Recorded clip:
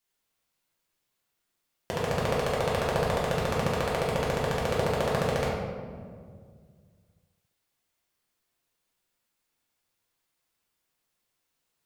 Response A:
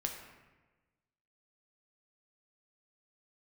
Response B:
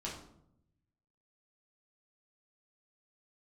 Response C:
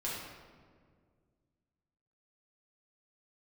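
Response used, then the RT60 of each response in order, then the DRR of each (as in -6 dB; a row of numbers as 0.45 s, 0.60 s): C; 1.2 s, 0.75 s, 1.9 s; 2.0 dB, -5.5 dB, -7.0 dB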